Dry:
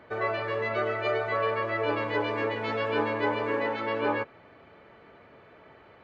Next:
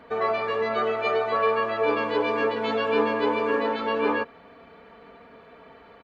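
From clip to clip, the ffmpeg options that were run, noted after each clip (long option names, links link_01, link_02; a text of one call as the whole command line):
ffmpeg -i in.wav -af "aecho=1:1:4.3:0.72,volume=2.5dB" out.wav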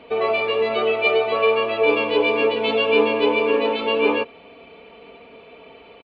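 ffmpeg -i in.wav -af "firequalizer=gain_entry='entry(200,0);entry(370,6);entry(1700,-7);entry(2500,13);entry(6200,-7)':delay=0.05:min_phase=1,volume=1dB" out.wav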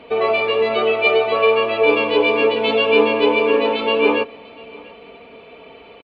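ffmpeg -i in.wav -af "aecho=1:1:693:0.0668,volume=3dB" out.wav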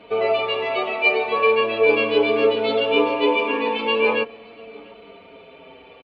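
ffmpeg -i in.wav -filter_complex "[0:a]asplit=2[link_01][link_02];[link_02]adelay=7,afreqshift=-0.4[link_03];[link_01][link_03]amix=inputs=2:normalize=1" out.wav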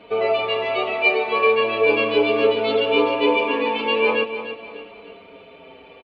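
ffmpeg -i in.wav -af "aecho=1:1:299|598|897|1196:0.282|0.104|0.0386|0.0143" out.wav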